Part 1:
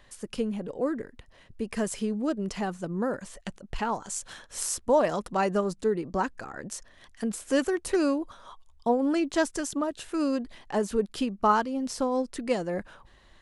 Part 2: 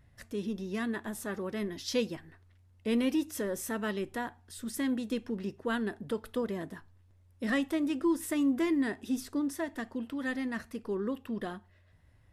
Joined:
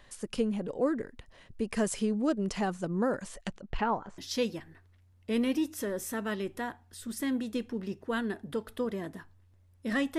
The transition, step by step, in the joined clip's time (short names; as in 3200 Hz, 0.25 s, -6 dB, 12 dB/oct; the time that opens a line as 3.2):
part 1
3.48–4.18 LPF 7100 Hz -> 1100 Hz
4.18 switch to part 2 from 1.75 s